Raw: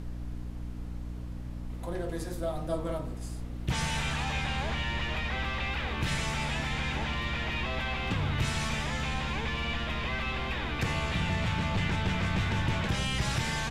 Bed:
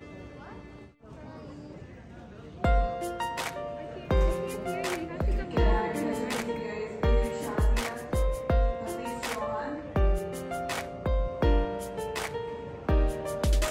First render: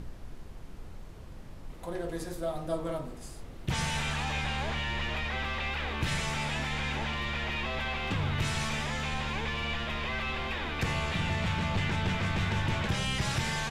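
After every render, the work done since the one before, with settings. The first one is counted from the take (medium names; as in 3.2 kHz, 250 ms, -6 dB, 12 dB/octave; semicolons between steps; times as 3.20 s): de-hum 60 Hz, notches 5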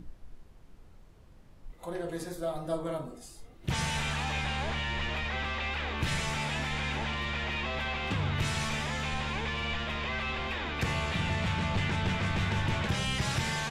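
noise print and reduce 10 dB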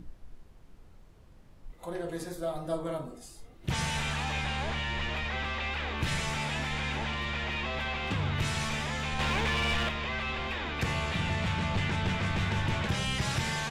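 9.19–9.89 s: waveshaping leveller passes 2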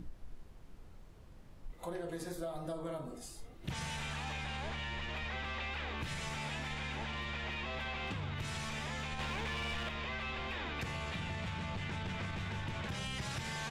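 peak limiter -24.5 dBFS, peak gain reduction 4.5 dB; compression, threshold -37 dBFS, peak gain reduction 9 dB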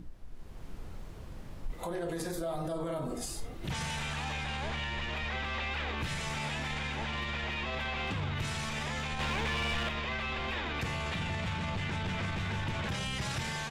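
level rider gain up to 11 dB; peak limiter -27.5 dBFS, peak gain reduction 10.5 dB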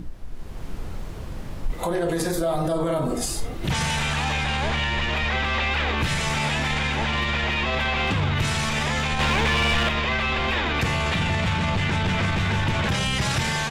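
trim +11.5 dB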